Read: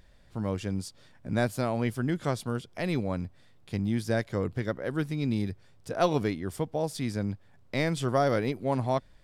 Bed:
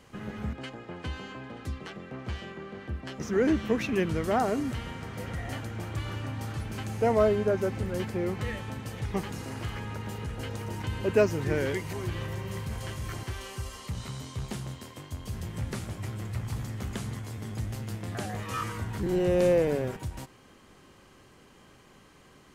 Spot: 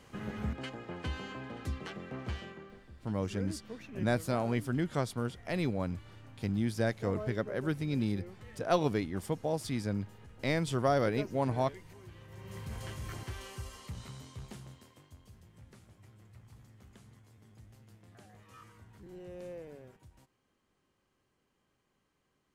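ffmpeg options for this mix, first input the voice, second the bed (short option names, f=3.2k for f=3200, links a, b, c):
-filter_complex "[0:a]adelay=2700,volume=-3dB[a];[1:a]volume=11.5dB,afade=t=out:st=2.21:d=0.65:silence=0.141254,afade=t=in:st=12.27:d=0.49:silence=0.223872,afade=t=out:st=13.42:d=1.99:silence=0.149624[b];[a][b]amix=inputs=2:normalize=0"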